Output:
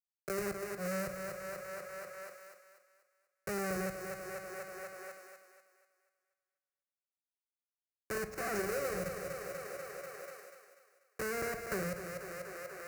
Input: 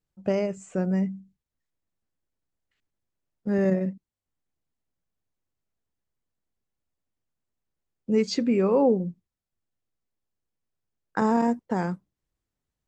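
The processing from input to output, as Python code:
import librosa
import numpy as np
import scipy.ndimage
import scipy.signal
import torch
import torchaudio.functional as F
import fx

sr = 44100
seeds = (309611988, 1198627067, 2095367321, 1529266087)

y = fx.high_shelf(x, sr, hz=4600.0, db=3.0)
y = fx.level_steps(y, sr, step_db=10)
y = fx.transient(y, sr, attack_db=-7, sustain_db=1)
y = fx.brickwall_bandstop(y, sr, low_hz=600.0, high_hz=5000.0)
y = fx.schmitt(y, sr, flips_db=-33.0)
y = scipy.signal.sosfilt(scipy.signal.butter(2, 51.0, 'highpass', fs=sr, output='sos'), y)
y = fx.low_shelf(y, sr, hz=180.0, db=-8.0)
y = fx.fixed_phaser(y, sr, hz=910.0, stages=6)
y = fx.echo_thinned(y, sr, ms=244, feedback_pct=42, hz=230.0, wet_db=-9.5)
y = fx.auto_swell(y, sr, attack_ms=256.0)
y = fx.room_shoebox(y, sr, seeds[0], volume_m3=1000.0, walls='furnished', distance_m=1.1)
y = fx.band_squash(y, sr, depth_pct=100)
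y = F.gain(torch.from_numpy(y), 9.0).numpy()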